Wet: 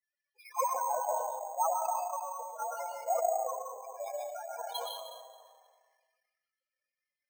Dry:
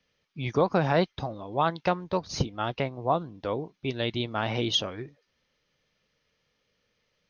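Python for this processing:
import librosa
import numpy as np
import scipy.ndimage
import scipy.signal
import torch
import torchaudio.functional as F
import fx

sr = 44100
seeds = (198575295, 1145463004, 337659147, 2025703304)

y = np.maximum(x, 0.0)
y = scipy.signal.sosfilt(scipy.signal.butter(4, 630.0, 'highpass', fs=sr, output='sos'), y)
y = fx.spec_topn(y, sr, count=2)
y = scipy.signal.sosfilt(scipy.signal.butter(2, 1800.0, 'lowpass', fs=sr, output='sos'), y)
y = fx.rev_freeverb(y, sr, rt60_s=1.3, hf_ratio=0.75, predelay_ms=90, drr_db=-1.5)
y = fx.transient(y, sr, attack_db=6, sustain_db=-3)
y = fx.peak_eq(y, sr, hz=990.0, db=12.5, octaves=0.21)
y = np.repeat(scipy.signal.resample_poly(y, 1, 6), 6)[:len(y)]
y = fx.sustainer(y, sr, db_per_s=33.0)
y = y * librosa.db_to_amplitude(2.5)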